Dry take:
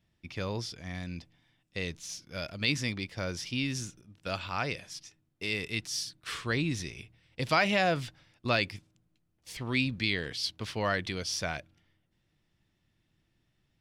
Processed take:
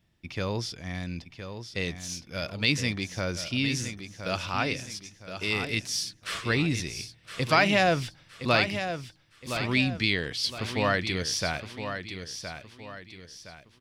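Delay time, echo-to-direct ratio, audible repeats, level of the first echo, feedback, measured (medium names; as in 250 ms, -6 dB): 1016 ms, -8.5 dB, 4, -9.0 dB, 38%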